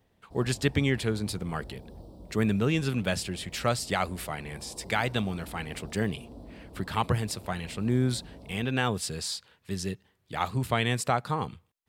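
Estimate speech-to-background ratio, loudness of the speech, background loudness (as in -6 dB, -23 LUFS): 18.5 dB, -30.0 LUFS, -48.5 LUFS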